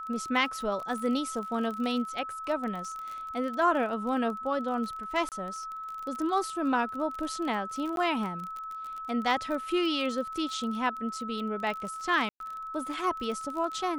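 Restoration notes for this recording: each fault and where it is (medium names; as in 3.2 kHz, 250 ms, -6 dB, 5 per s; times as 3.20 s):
crackle 27 per s -34 dBFS
whine 1.3 kHz -36 dBFS
5.29–5.32 s: dropout 28 ms
7.96–7.97 s: dropout 12 ms
12.29–12.40 s: dropout 112 ms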